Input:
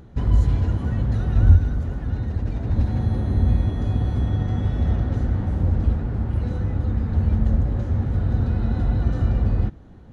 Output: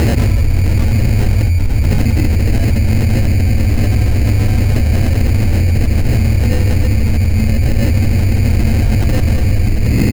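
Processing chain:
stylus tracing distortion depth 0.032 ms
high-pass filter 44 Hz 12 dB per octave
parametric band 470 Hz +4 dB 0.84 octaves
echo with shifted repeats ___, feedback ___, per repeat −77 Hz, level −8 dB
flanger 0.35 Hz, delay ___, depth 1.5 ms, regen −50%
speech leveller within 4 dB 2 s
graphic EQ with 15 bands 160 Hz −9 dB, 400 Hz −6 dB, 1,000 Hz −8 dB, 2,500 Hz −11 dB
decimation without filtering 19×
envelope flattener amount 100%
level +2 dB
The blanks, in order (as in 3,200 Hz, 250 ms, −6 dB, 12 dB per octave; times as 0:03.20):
137 ms, 58%, 8.6 ms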